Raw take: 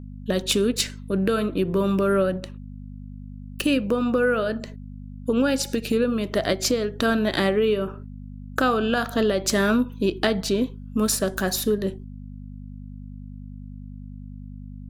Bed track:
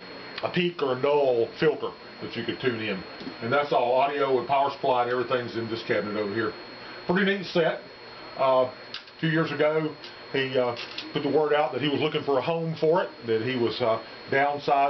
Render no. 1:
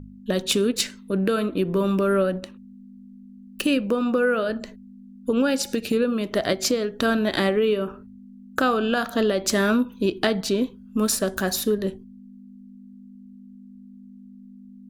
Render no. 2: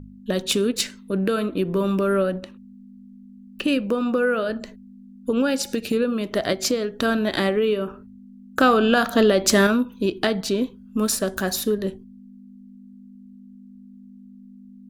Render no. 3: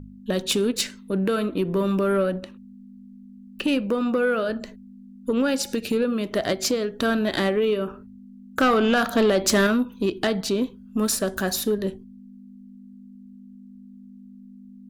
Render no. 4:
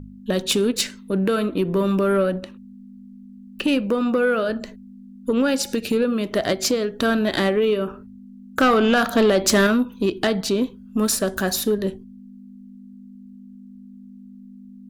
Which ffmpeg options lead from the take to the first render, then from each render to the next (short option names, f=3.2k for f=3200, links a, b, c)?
-af "bandreject=f=50:t=h:w=4,bandreject=f=100:t=h:w=4,bandreject=f=150:t=h:w=4"
-filter_complex "[0:a]asettb=1/sr,asplit=3[a][b][c];[a]atrim=end=2.284[d];[b]atrim=start=2.28:end=3.68,asetpts=PTS-STARTPTS,afade=t=in:d=0.004:c=qsin,afade=t=out:st=1.396:d=0.004:c=qsin,acrossover=split=4500[e][f];[f]acompressor=threshold=-46dB:ratio=4:attack=1:release=60[g];[e][g]amix=inputs=2:normalize=0[h];[c]atrim=start=3.676[i];[d][h]acrossfade=d=0.004:c1=hsin:c2=qsin[j];[j][i]acrossfade=d=0.004:c1=qsin:c2=hsin,asettb=1/sr,asplit=3[k][l][m];[k]atrim=end=8.604[n];[l]atrim=start=8.6:end=9.67,asetpts=PTS-STARTPTS,afade=t=in:d=0.004:c=qsin,afade=t=out:st=1.066:d=0.004:c=qsin,acontrast=28[o];[m]atrim=start=9.666[p];[n][o]acrossfade=d=0.004:c1=hsin:c2=qsin[q];[q][p]acrossfade=d=0.004:c1=qsin:c2=hsin"
-af "asoftclip=type=tanh:threshold=-12.5dB"
-af "volume=2.5dB"